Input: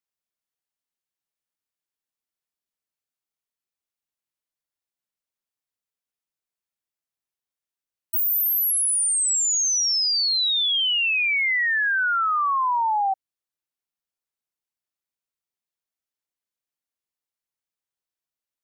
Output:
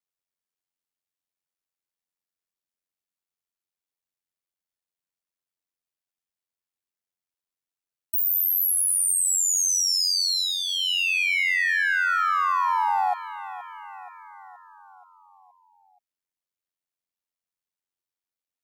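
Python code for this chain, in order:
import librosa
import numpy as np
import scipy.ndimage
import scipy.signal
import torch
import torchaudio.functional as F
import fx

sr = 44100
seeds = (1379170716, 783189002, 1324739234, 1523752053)

p1 = fx.dynamic_eq(x, sr, hz=3500.0, q=4.3, threshold_db=-39.0, ratio=4.0, max_db=-6)
p2 = p1 * np.sin(2.0 * np.pi * 45.0 * np.arange(len(p1)) / sr)
p3 = np.where(np.abs(p2) >= 10.0 ** (-35.5 / 20.0), p2, 0.0)
p4 = p2 + F.gain(torch.from_numpy(p3), -11.5).numpy()
y = fx.echo_feedback(p4, sr, ms=475, feedback_pct=58, wet_db=-14.5)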